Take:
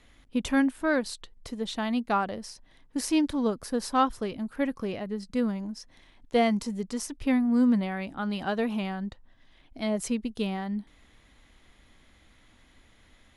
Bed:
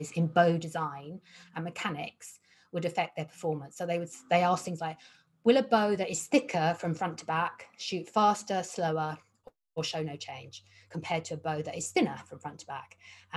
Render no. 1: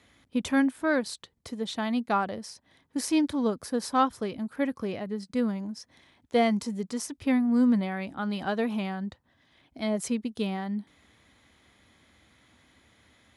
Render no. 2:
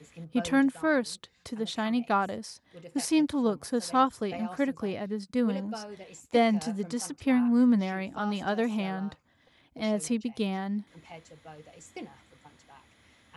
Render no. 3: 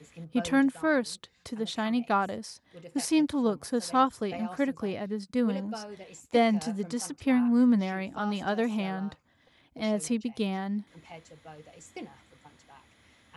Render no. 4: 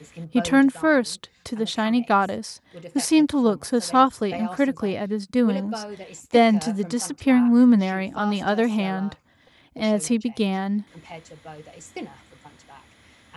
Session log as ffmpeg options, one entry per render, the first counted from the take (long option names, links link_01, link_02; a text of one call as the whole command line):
ffmpeg -i in.wav -af "highpass=frequency=71:width=0.5412,highpass=frequency=71:width=1.3066,bandreject=frequency=2800:width=19" out.wav
ffmpeg -i in.wav -i bed.wav -filter_complex "[1:a]volume=-15dB[link_01];[0:a][link_01]amix=inputs=2:normalize=0" out.wav
ffmpeg -i in.wav -af anull out.wav
ffmpeg -i in.wav -af "volume=7dB" out.wav